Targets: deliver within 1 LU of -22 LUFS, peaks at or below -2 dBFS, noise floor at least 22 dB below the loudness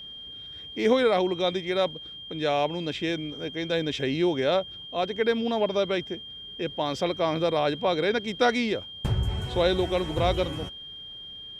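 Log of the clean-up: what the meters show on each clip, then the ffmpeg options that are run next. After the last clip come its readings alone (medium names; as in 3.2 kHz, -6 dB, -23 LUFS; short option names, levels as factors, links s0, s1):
steady tone 3.2 kHz; tone level -39 dBFS; loudness -26.5 LUFS; peak level -10.0 dBFS; loudness target -22.0 LUFS
-> -af "bandreject=f=3200:w=30"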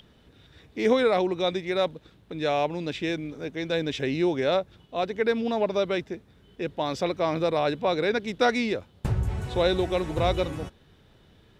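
steady tone not found; loudness -26.5 LUFS; peak level -10.0 dBFS; loudness target -22.0 LUFS
-> -af "volume=1.68"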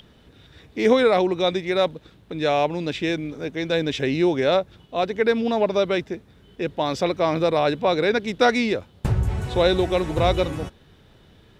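loudness -22.0 LUFS; peak level -5.5 dBFS; noise floor -54 dBFS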